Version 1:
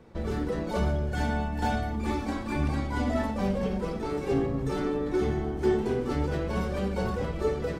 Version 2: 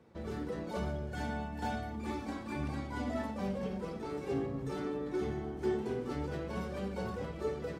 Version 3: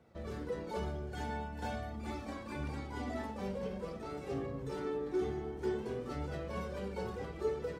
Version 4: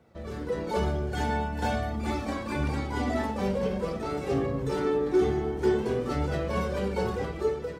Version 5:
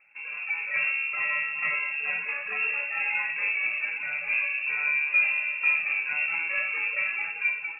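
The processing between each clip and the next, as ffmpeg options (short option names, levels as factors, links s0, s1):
-af "highpass=78,volume=0.398"
-af "flanger=delay=1.4:depth=1.2:regen=45:speed=0.48:shape=triangular,volume=1.33"
-af "dynaudnorm=f=150:g=7:m=2.24,volume=1.58"
-af "lowpass=f=2400:t=q:w=0.5098,lowpass=f=2400:t=q:w=0.6013,lowpass=f=2400:t=q:w=0.9,lowpass=f=2400:t=q:w=2.563,afreqshift=-2800"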